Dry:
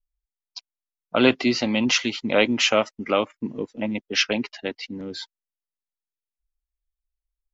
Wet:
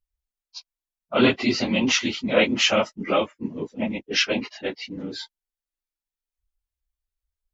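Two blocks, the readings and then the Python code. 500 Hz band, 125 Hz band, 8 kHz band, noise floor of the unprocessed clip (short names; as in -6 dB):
-0.5 dB, +1.5 dB, n/a, under -85 dBFS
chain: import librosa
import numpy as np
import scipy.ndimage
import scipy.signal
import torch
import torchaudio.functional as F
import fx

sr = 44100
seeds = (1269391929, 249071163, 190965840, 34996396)

y = fx.phase_scramble(x, sr, seeds[0], window_ms=50)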